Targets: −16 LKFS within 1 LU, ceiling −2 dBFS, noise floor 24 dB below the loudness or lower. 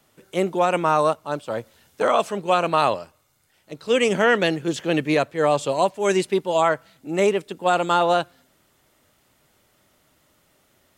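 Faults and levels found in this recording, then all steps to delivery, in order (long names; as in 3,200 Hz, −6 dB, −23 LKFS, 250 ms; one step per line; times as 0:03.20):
integrated loudness −21.5 LKFS; sample peak −6.0 dBFS; target loudness −16.0 LKFS
→ level +5.5 dB
brickwall limiter −2 dBFS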